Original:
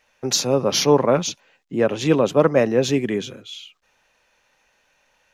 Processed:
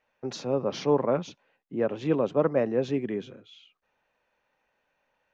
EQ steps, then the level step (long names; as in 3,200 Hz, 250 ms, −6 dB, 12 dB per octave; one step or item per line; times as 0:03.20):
high-frequency loss of the air 120 metres
low-shelf EQ 86 Hz −8.5 dB
high-shelf EQ 2,100 Hz −9.5 dB
−6.5 dB